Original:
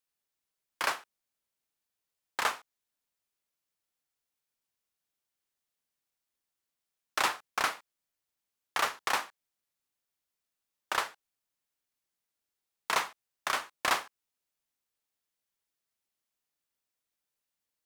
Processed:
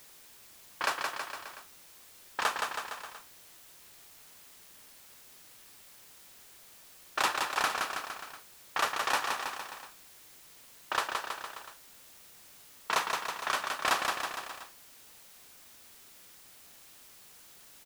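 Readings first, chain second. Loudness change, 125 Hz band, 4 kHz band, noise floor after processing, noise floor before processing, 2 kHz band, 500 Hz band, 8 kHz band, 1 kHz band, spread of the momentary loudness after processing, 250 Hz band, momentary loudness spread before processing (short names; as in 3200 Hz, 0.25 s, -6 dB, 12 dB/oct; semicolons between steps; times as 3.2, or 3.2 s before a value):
-0.5 dB, +2.5 dB, +2.0 dB, -55 dBFS, under -85 dBFS, +1.5 dB, +2.0 dB, +2.0 dB, +2.0 dB, 22 LU, +2.0 dB, 11 LU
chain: low-pass opened by the level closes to 1200 Hz, open at -27 dBFS; notch 2100 Hz, Q 11; on a send: bouncing-ball echo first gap 0.17 s, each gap 0.9×, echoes 5; on the sum: added noise white -55 dBFS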